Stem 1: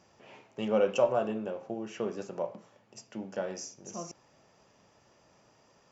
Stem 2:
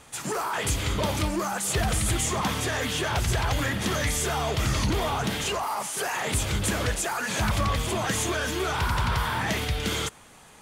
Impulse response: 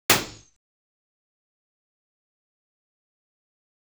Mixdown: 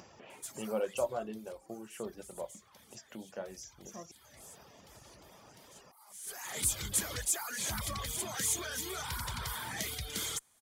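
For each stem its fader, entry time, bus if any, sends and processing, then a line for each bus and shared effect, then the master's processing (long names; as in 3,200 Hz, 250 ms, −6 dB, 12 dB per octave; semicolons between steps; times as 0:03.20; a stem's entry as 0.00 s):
−7.0 dB, 0.00 s, no send, upward compression, threshold −36 dBFS
0.0 dB, 0.30 s, no send, first-order pre-emphasis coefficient 0.8; notch filter 2,700 Hz, Q 8.6; harmonic generator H 6 −32 dB, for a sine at −18.5 dBFS; automatic ducking −23 dB, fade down 1.40 s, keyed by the first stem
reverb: not used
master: reverb reduction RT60 0.69 s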